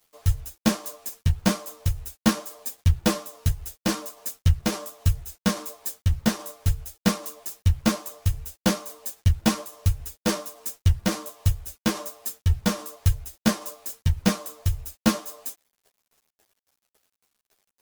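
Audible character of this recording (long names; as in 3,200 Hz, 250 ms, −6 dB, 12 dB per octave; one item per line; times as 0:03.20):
tremolo saw down 3.6 Hz, depth 40%
a quantiser's noise floor 10 bits, dither none
a shimmering, thickened sound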